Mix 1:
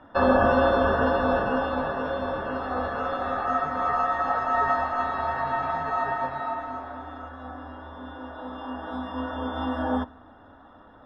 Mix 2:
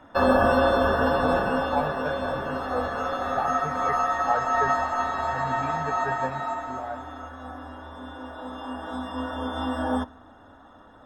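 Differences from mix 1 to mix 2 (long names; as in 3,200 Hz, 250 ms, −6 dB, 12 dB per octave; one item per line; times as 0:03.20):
speech +8.0 dB
master: remove moving average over 6 samples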